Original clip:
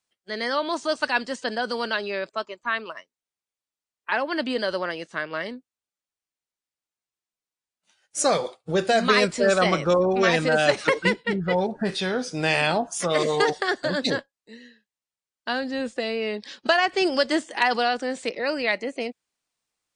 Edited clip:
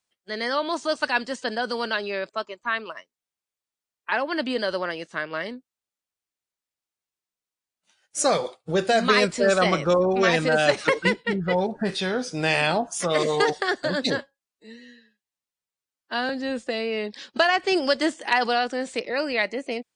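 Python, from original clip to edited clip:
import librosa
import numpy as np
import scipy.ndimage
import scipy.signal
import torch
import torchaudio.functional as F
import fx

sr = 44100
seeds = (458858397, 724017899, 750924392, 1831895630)

y = fx.edit(x, sr, fx.stretch_span(start_s=14.18, length_s=1.41, factor=1.5), tone=tone)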